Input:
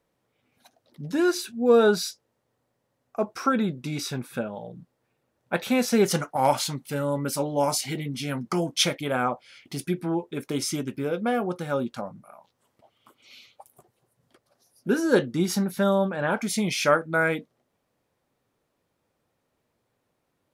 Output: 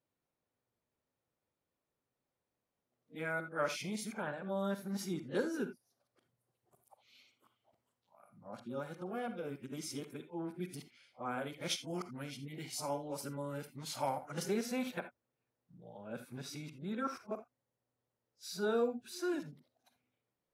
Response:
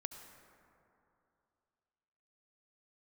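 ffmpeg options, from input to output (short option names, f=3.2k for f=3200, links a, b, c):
-filter_complex "[0:a]areverse[a];[1:a]atrim=start_sample=2205,afade=t=out:st=0.2:d=0.01,atrim=end_sample=9261,asetrate=74970,aresample=44100[b];[a][b]afir=irnorm=-1:irlink=0,volume=-6.5dB"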